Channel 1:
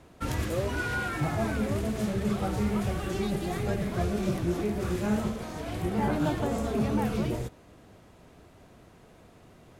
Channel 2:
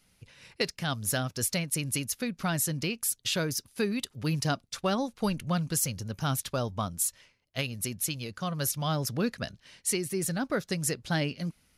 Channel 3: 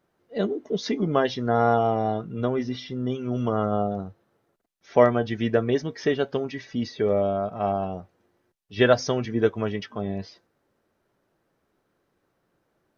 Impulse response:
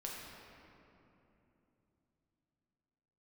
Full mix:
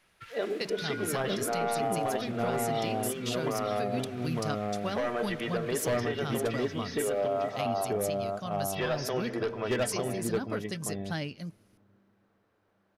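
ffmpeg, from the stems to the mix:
-filter_complex "[0:a]alimiter=level_in=0.5dB:limit=-24dB:level=0:latency=1:release=63,volume=-0.5dB,highpass=frequency=1500:width=0.5412,highpass=frequency=1500:width=1.3066,volume=-5.5dB,asplit=3[link_01][link_02][link_03];[link_02]volume=-3.5dB[link_04];[link_03]volume=-13dB[link_05];[1:a]volume=-6dB[link_06];[2:a]asoftclip=type=hard:threshold=-15.5dB,volume=-1dB,asplit=3[link_07][link_08][link_09];[link_08]volume=-13dB[link_10];[link_09]volume=-6.5dB[link_11];[link_01][link_07]amix=inputs=2:normalize=0,highpass=420,lowpass=4000,alimiter=limit=-21dB:level=0:latency=1,volume=0dB[link_12];[3:a]atrim=start_sample=2205[link_13];[link_04][link_10]amix=inputs=2:normalize=0[link_14];[link_14][link_13]afir=irnorm=-1:irlink=0[link_15];[link_05][link_11]amix=inputs=2:normalize=0,aecho=0:1:902:1[link_16];[link_06][link_12][link_15][link_16]amix=inputs=4:normalize=0,alimiter=limit=-20.5dB:level=0:latency=1:release=91"

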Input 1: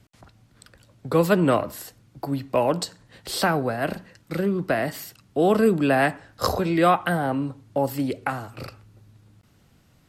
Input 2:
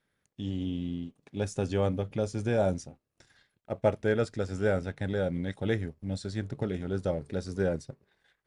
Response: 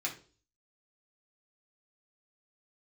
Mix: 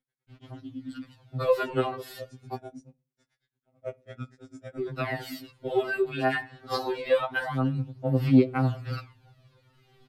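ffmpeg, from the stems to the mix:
-filter_complex "[0:a]highshelf=frequency=5300:width_type=q:width=1.5:gain=-9,acompressor=threshold=-27dB:ratio=2,aphaser=in_gain=1:out_gain=1:delay=2.8:decay=0.66:speed=0.25:type=sinusoidal,adelay=300,volume=0dB,asplit=3[link_01][link_02][link_03];[link_01]atrim=end=2.55,asetpts=PTS-STARTPTS,afade=type=out:start_time=2.546:duration=0.004:curve=hsin[link_04];[link_02]atrim=start=2.55:end=4.79,asetpts=PTS-STARTPTS,volume=0[link_05];[link_03]atrim=start=4.79,asetpts=PTS-STARTPTS,afade=type=in:duration=0.004:curve=hsin[link_06];[link_04][link_05][link_06]concat=n=3:v=0:a=1[link_07];[1:a]equalizer=frequency=210:width_type=o:width=0.83:gain=10.5,aeval=exprs='val(0)*pow(10,-39*(0.5-0.5*cos(2*PI*9*n/s))/20)':channel_layout=same,volume=-5.5dB,asplit=2[link_08][link_09];[link_09]volume=-18.5dB[link_10];[2:a]atrim=start_sample=2205[link_11];[link_10][link_11]afir=irnorm=-1:irlink=0[link_12];[link_07][link_08][link_12]amix=inputs=3:normalize=0,afftfilt=real='re*2.45*eq(mod(b,6),0)':imag='im*2.45*eq(mod(b,6),0)':win_size=2048:overlap=0.75"

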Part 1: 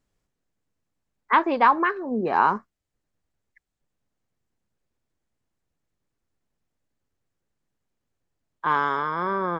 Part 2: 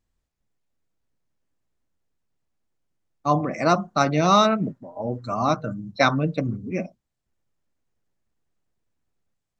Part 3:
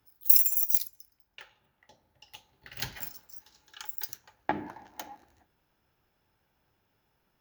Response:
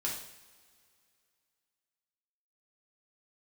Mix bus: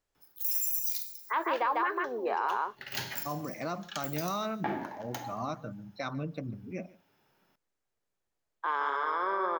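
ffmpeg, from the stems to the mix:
-filter_complex "[0:a]highpass=frequency=380:width=0.5412,highpass=frequency=380:width=1.3066,volume=-4dB,asplit=2[link_01][link_02];[link_02]volume=-6.5dB[link_03];[1:a]alimiter=limit=-13dB:level=0:latency=1:release=100,volume=-11.5dB,asplit=3[link_04][link_05][link_06];[link_05]volume=-22dB[link_07];[2:a]highpass=150,highshelf=frequency=9300:gain=-4,adelay=150,volume=2dB,asplit=2[link_08][link_09];[link_09]volume=-8dB[link_10];[link_06]apad=whole_len=333221[link_11];[link_08][link_11]sidechaincompress=threshold=-38dB:ratio=8:attack=16:release=108[link_12];[3:a]atrim=start_sample=2205[link_13];[link_10][link_13]afir=irnorm=-1:irlink=0[link_14];[link_03][link_07]amix=inputs=2:normalize=0,aecho=0:1:147:1[link_15];[link_01][link_04][link_12][link_14][link_15]amix=inputs=5:normalize=0,alimiter=limit=-20.5dB:level=0:latency=1:release=39"

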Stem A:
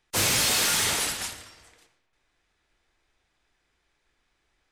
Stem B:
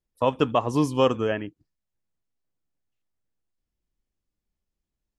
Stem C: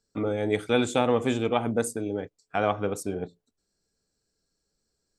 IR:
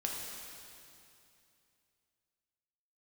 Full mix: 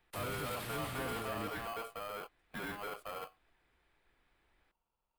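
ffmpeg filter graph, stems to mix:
-filter_complex "[0:a]volume=0dB[link_01];[1:a]volume=-7dB[link_02];[2:a]aemphasis=mode=reproduction:type=75kf,volume=29.5dB,asoftclip=hard,volume=-29.5dB,aeval=exprs='val(0)*sgn(sin(2*PI*920*n/s))':channel_layout=same,volume=-8.5dB[link_03];[link_01][link_02]amix=inputs=2:normalize=0,acrossover=split=230[link_04][link_05];[link_05]acompressor=threshold=-36dB:ratio=2.5[link_06];[link_04][link_06]amix=inputs=2:normalize=0,alimiter=level_in=8dB:limit=-24dB:level=0:latency=1,volume=-8dB,volume=0dB[link_07];[link_03][link_07]amix=inputs=2:normalize=0,equalizer=frequency=6200:width=1.2:gain=-15"

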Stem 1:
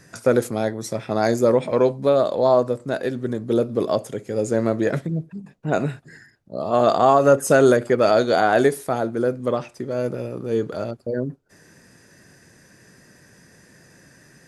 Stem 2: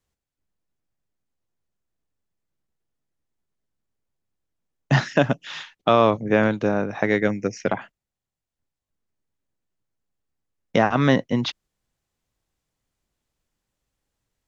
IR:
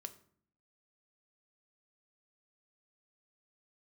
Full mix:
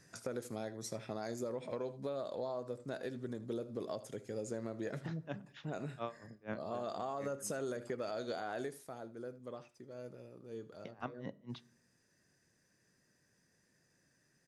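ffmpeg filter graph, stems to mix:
-filter_complex "[0:a]alimiter=limit=-10dB:level=0:latency=1:release=147,volume=-14dB,afade=type=out:start_time=8.61:duration=0.29:silence=0.316228,asplit=3[link_01][link_02][link_03];[link_02]volume=-18.5dB[link_04];[1:a]highshelf=frequency=3900:gain=-9,aeval=exprs='val(0)*pow(10,-35*(0.5-0.5*cos(2*PI*4.2*n/s))/20)':channel_layout=same,adelay=100,volume=-17.5dB,asplit=2[link_05][link_06];[link_06]volume=-3dB[link_07];[link_03]apad=whole_len=642821[link_08];[link_05][link_08]sidechaincompress=threshold=-47dB:ratio=8:attack=10:release=179[link_09];[2:a]atrim=start_sample=2205[link_10];[link_07][link_10]afir=irnorm=-1:irlink=0[link_11];[link_04]aecho=0:1:79:1[link_12];[link_01][link_09][link_11][link_12]amix=inputs=4:normalize=0,equalizer=frequency=5500:width_type=o:width=1.5:gain=4,acompressor=threshold=-38dB:ratio=3"

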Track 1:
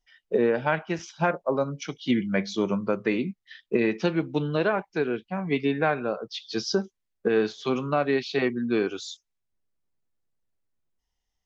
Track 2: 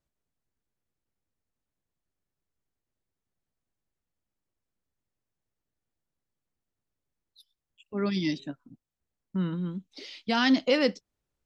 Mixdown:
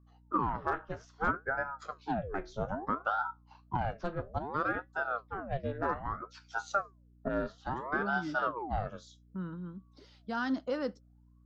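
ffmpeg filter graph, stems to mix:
ffmpeg -i stem1.wav -i stem2.wav -filter_complex "[0:a]flanger=delay=8.3:depth=6.2:regen=64:speed=0.2:shape=triangular,aeval=exprs='0.237*(cos(1*acos(clip(val(0)/0.237,-1,1)))-cos(1*PI/2))+0.0422*(cos(5*acos(clip(val(0)/0.237,-1,1)))-cos(5*PI/2))+0.0211*(cos(7*acos(clip(val(0)/0.237,-1,1)))-cos(7*PI/2))':channel_layout=same,aeval=exprs='val(0)*sin(2*PI*650*n/s+650*0.75/0.61*sin(2*PI*0.61*n/s))':channel_layout=same,volume=-5.5dB[link_01];[1:a]volume=-10dB[link_02];[link_01][link_02]amix=inputs=2:normalize=0,highshelf=frequency=1800:width_type=q:width=3:gain=-7,aeval=exprs='val(0)+0.001*(sin(2*PI*60*n/s)+sin(2*PI*2*60*n/s)/2+sin(2*PI*3*60*n/s)/3+sin(2*PI*4*60*n/s)/4+sin(2*PI*5*60*n/s)/5)':channel_layout=same" out.wav

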